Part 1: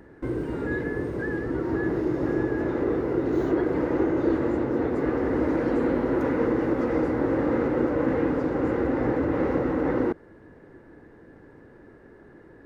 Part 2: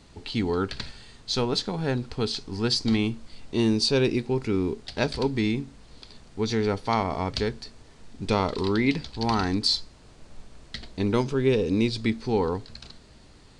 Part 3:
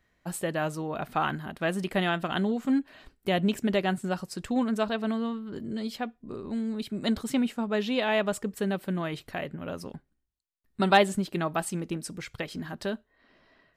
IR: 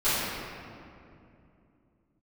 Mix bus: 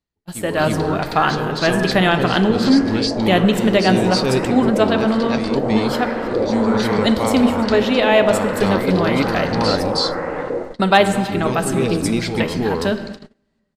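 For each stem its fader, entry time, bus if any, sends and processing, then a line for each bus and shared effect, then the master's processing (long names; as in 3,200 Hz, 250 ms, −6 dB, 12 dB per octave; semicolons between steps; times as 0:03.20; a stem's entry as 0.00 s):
−7.0 dB, 0.50 s, send −21 dB, echo send −14.5 dB, low shelf with overshoot 420 Hz −9 dB, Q 1.5; auto-filter low-pass saw up 1.2 Hz 450–4,500 Hz
−0.5 dB, 0.00 s, no send, echo send −5.5 dB, automatic ducking −10 dB, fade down 0.25 s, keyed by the third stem
+3.0 dB, 0.00 s, send −23 dB, echo send −19.5 dB, hum removal 79.31 Hz, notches 5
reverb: on, RT60 2.6 s, pre-delay 3 ms
echo: single-tap delay 318 ms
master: automatic gain control gain up to 9 dB; noise gate −29 dBFS, range −31 dB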